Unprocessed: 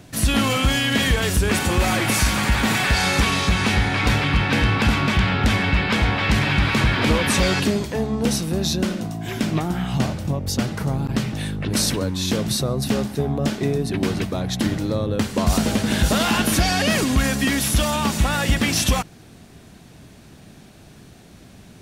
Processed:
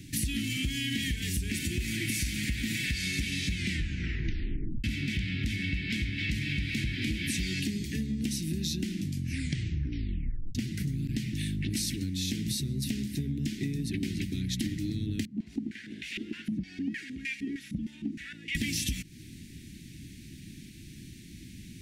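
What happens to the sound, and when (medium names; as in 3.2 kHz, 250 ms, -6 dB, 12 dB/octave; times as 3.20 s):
3.54 s: tape stop 1.30 s
8.90 s: tape stop 1.65 s
15.25–18.55 s: step-sequenced band-pass 6.5 Hz 200–2300 Hz
whole clip: elliptic band-stop 320–2000 Hz, stop band 40 dB; compression, threshold -29 dBFS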